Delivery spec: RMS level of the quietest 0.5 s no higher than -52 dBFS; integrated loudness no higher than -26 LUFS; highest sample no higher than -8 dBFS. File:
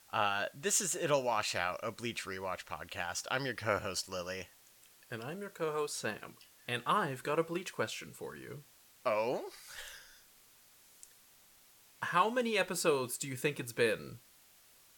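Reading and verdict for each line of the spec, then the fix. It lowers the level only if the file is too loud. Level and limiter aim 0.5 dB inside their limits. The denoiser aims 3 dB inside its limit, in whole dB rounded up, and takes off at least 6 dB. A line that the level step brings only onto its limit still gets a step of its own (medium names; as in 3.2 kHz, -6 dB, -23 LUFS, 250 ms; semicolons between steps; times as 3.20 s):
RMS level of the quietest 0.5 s -63 dBFS: pass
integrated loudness -35.0 LUFS: pass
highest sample -15.0 dBFS: pass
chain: none needed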